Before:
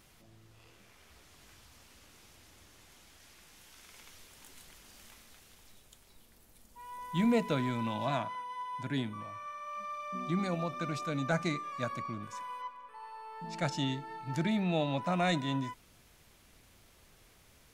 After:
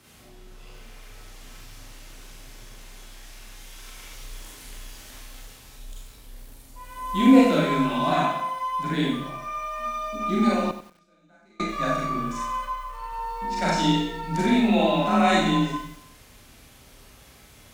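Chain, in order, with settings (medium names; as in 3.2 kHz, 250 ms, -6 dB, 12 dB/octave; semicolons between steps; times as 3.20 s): Schroeder reverb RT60 0.64 s, combs from 30 ms, DRR -5 dB; frequency shift +31 Hz; 10.70–11.60 s: inverted gate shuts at -23 dBFS, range -35 dB; bit-crushed delay 93 ms, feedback 35%, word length 8-bit, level -12 dB; trim +4.5 dB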